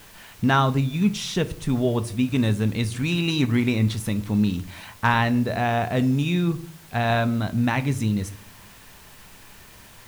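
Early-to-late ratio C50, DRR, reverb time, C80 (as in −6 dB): 18.0 dB, 10.0 dB, 0.55 s, 21.5 dB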